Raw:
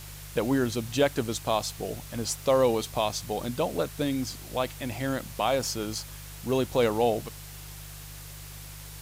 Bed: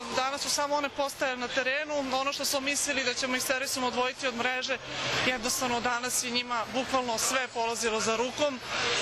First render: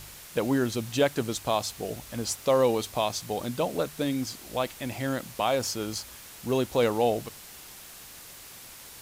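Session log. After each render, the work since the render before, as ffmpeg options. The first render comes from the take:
-af "bandreject=f=50:t=h:w=4,bandreject=f=100:t=h:w=4,bandreject=f=150:t=h:w=4"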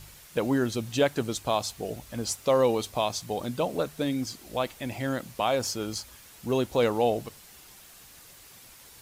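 -af "afftdn=nr=6:nf=-47"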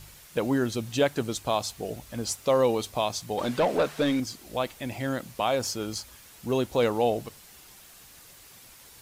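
-filter_complex "[0:a]asettb=1/sr,asplit=3[s0][s1][s2];[s0]atrim=end=3.384[s3];[s1]atrim=start=3.38:end=4.2,asetpts=PTS-STARTPTS,afade=t=in:d=0.004:c=qsin,afade=t=out:st=0.816:d=0.004:c=qsin,asplit=2[s4][s5];[s5]highpass=f=720:p=1,volume=8.91,asoftclip=type=tanh:threshold=0.2[s6];[s4][s6]amix=inputs=2:normalize=0,lowpass=f=2300:p=1,volume=0.501[s7];[s2]atrim=start=4.196[s8];[s3][s7]acrossfade=d=0.004:c1=hsin:c2=qsin[s9];[s9][s8]acrossfade=d=0.004:c1=qsin:c2=hsin"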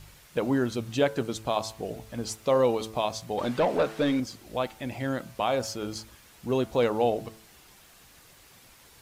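-af "highshelf=f=4500:g=-7,bandreject=f=110.3:t=h:w=4,bandreject=f=220.6:t=h:w=4,bandreject=f=330.9:t=h:w=4,bandreject=f=441.2:t=h:w=4,bandreject=f=551.5:t=h:w=4,bandreject=f=661.8:t=h:w=4,bandreject=f=772.1:t=h:w=4,bandreject=f=882.4:t=h:w=4,bandreject=f=992.7:t=h:w=4,bandreject=f=1103:t=h:w=4,bandreject=f=1213.3:t=h:w=4,bandreject=f=1323.6:t=h:w=4,bandreject=f=1433.9:t=h:w=4,bandreject=f=1544.2:t=h:w=4"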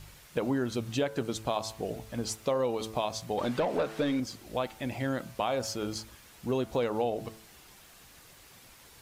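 -af "acompressor=threshold=0.0501:ratio=4"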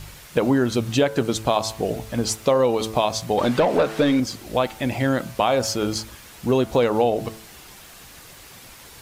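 -af "volume=3.35"

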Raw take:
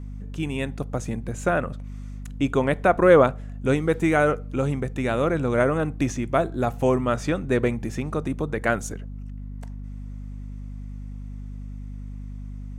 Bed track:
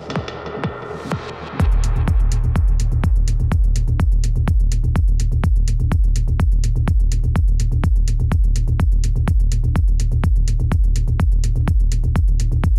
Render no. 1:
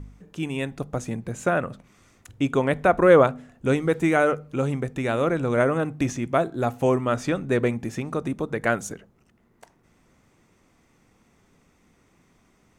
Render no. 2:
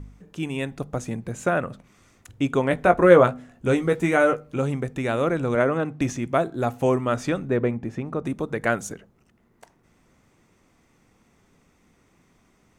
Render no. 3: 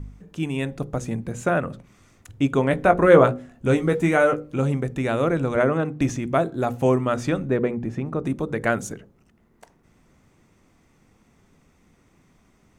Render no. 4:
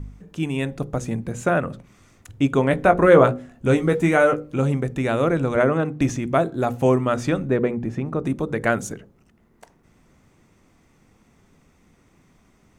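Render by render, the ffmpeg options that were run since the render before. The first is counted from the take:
-af "bandreject=f=50:t=h:w=4,bandreject=f=100:t=h:w=4,bandreject=f=150:t=h:w=4,bandreject=f=200:t=h:w=4,bandreject=f=250:t=h:w=4"
-filter_complex "[0:a]asettb=1/sr,asplit=3[s0][s1][s2];[s0]atrim=end=2.694[s3];[s1]atrim=start=2.69:end=4.59,asetpts=PTS-STARTPTS,afade=t=in:d=0.004:c=qsin,afade=t=out:st=1.896:d=0.004:c=qsin,asplit=2[s4][s5];[s5]adelay=17,volume=0.447[s6];[s4][s6]amix=inputs=2:normalize=0,atrim=end_sample=83790[s7];[s2]atrim=start=4.586[s8];[s3][s7]acrossfade=d=0.004:c1=hsin:c2=qsin[s9];[s9][s8]acrossfade=d=0.004:c1=qsin:c2=hsin,asettb=1/sr,asplit=3[s10][s11][s12];[s10]atrim=end=5.554[s13];[s11]atrim=start=5.55:end=6.01,asetpts=PTS-STARTPTS,afade=t=in:d=0.004:c=qsin,afade=t=out:st=0.456:d=0.004:c=qsin,highpass=120,lowpass=6200[s14];[s12]atrim=start=6.006[s15];[s13][s14]acrossfade=d=0.004:c1=hsin:c2=qsin[s16];[s16][s15]acrossfade=d=0.004:c1=qsin:c2=hsin,asettb=1/sr,asplit=3[s17][s18][s19];[s17]atrim=end=7.484[s20];[s18]atrim=start=7.48:end=8.25,asetpts=PTS-STARTPTS,afade=t=in:d=0.004:c=qsin,afade=t=out:st=0.766:d=0.004:c=qsin,lowpass=f=1400:p=1[s21];[s19]atrim=start=8.246[s22];[s20][s21]acrossfade=d=0.004:c1=hsin:c2=qsin[s23];[s23][s22]acrossfade=d=0.004:c1=qsin:c2=hsin"
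-af "lowshelf=f=300:g=5,bandreject=f=60:t=h:w=6,bandreject=f=120:t=h:w=6,bandreject=f=180:t=h:w=6,bandreject=f=240:t=h:w=6,bandreject=f=300:t=h:w=6,bandreject=f=360:t=h:w=6,bandreject=f=420:t=h:w=6,bandreject=f=480:t=h:w=6,bandreject=f=540:t=h:w=6"
-af "volume=1.19,alimiter=limit=0.708:level=0:latency=1"

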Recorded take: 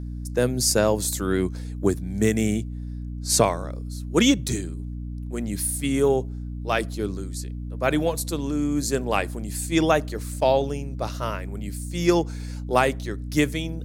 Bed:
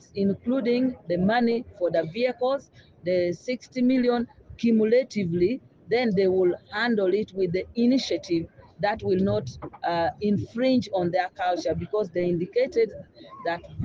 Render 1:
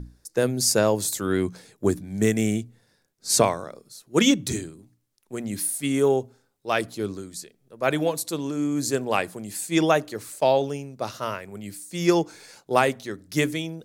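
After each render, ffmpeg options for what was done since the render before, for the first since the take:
-af "bandreject=f=60:t=h:w=6,bandreject=f=120:t=h:w=6,bandreject=f=180:t=h:w=6,bandreject=f=240:t=h:w=6,bandreject=f=300:t=h:w=6"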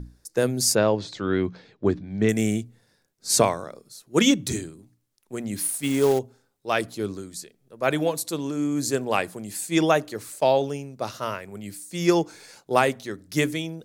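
-filter_complex "[0:a]asettb=1/sr,asplit=3[s0][s1][s2];[s0]atrim=end=0.754[s3];[s1]atrim=start=0.75:end=2.29,asetpts=PTS-STARTPTS,afade=t=in:d=0.004:c=qsin,afade=t=out:st=1.536:d=0.004:c=qsin,lowpass=f=4300:w=0.5412,lowpass=f=4300:w=1.3066[s4];[s2]atrim=start=2.286[s5];[s3][s4]acrossfade=d=0.004:c1=hsin:c2=qsin[s6];[s6][s5]acrossfade=d=0.004:c1=qsin:c2=hsin,asettb=1/sr,asplit=3[s7][s8][s9];[s7]atrim=end=5.564[s10];[s8]atrim=start=5.56:end=6.19,asetpts=PTS-STARTPTS,afade=t=in:d=0.004:c=qsin,afade=t=out:st=0.626:d=0.004:c=qsin,acrusher=bits=4:mode=log:mix=0:aa=0.000001[s11];[s9]atrim=start=6.186[s12];[s10][s11]acrossfade=d=0.004:c1=hsin:c2=qsin[s13];[s13][s12]acrossfade=d=0.004:c1=qsin:c2=hsin"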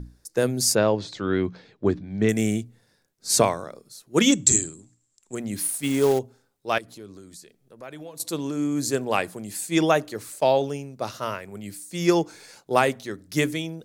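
-filter_complex "[0:a]asettb=1/sr,asplit=3[s0][s1][s2];[s0]atrim=end=4.324[s3];[s1]atrim=start=4.32:end=5.35,asetpts=PTS-STARTPTS,afade=t=in:d=0.004:c=qsin,afade=t=out:st=1.026:d=0.004:c=qsin,lowpass=f=7500:t=q:w=15[s4];[s2]atrim=start=5.346[s5];[s3][s4]acrossfade=d=0.004:c1=hsin:c2=qsin[s6];[s6][s5]acrossfade=d=0.004:c1=qsin:c2=hsin,asettb=1/sr,asplit=3[s7][s8][s9];[s7]atrim=end=6.784[s10];[s8]atrim=start=6.78:end=8.2,asetpts=PTS-STARTPTS,afade=t=in:d=0.004:c=qsin,afade=t=out:st=1.416:d=0.004:c=qsin,acompressor=threshold=0.00631:ratio=2.5:attack=3.2:release=140:knee=1:detection=peak[s11];[s9]atrim=start=8.196[s12];[s10][s11]acrossfade=d=0.004:c1=hsin:c2=qsin[s13];[s13][s12]acrossfade=d=0.004:c1=qsin:c2=hsin"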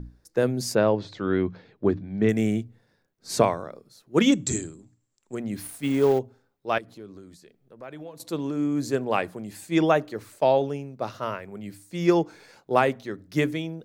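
-af "equalizer=f=9600:w=0.43:g=-13.5,bandreject=f=50:t=h:w=6,bandreject=f=100:t=h:w=6"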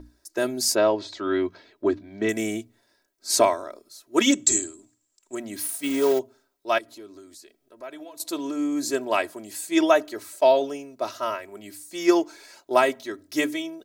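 -af "bass=f=250:g=-13,treble=f=4000:g=8,aecho=1:1:3.1:0.83"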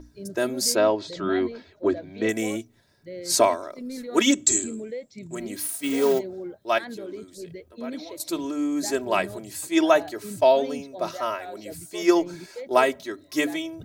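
-filter_complex "[1:a]volume=0.2[s0];[0:a][s0]amix=inputs=2:normalize=0"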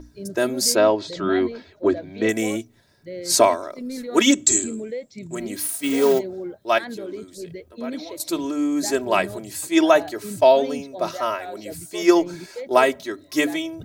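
-af "volume=1.5,alimiter=limit=0.708:level=0:latency=1"

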